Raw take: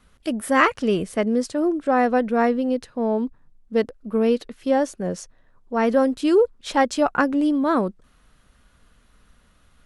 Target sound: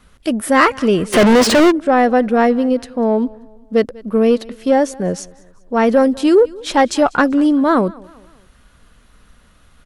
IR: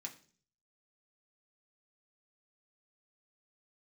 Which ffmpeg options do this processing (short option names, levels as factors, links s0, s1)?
-filter_complex "[0:a]aecho=1:1:194|388|582:0.0631|0.0278|0.0122,acontrast=87,asplit=3[s0][s1][s2];[s0]afade=t=out:st=1.12:d=0.02[s3];[s1]asplit=2[s4][s5];[s5]highpass=f=720:p=1,volume=100,asoftclip=type=tanh:threshold=0.668[s6];[s4][s6]amix=inputs=2:normalize=0,lowpass=f=2900:p=1,volume=0.501,afade=t=in:st=1.12:d=0.02,afade=t=out:st=1.7:d=0.02[s7];[s2]afade=t=in:st=1.7:d=0.02[s8];[s3][s7][s8]amix=inputs=3:normalize=0"